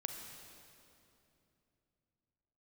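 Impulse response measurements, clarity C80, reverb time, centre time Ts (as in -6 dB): 5.5 dB, 2.9 s, 66 ms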